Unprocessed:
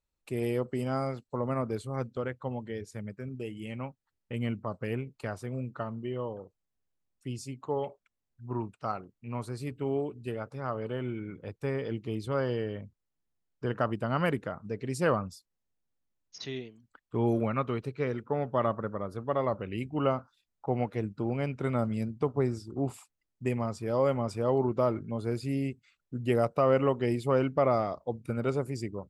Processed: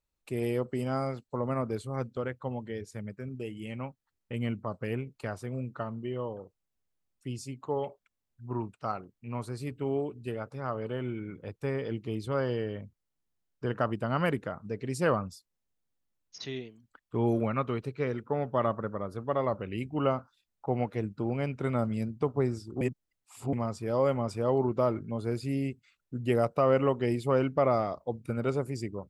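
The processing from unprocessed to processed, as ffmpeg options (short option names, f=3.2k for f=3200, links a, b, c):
-filter_complex "[0:a]asplit=3[a][b][c];[a]atrim=end=22.812[d];[b]atrim=start=22.808:end=23.532,asetpts=PTS-STARTPTS,areverse[e];[c]atrim=start=23.528[f];[d][e]acrossfade=d=0.004:c1=hsin:c2=hsin[g];[g][f]acrossfade=d=0.004:c1=hsin:c2=hsin"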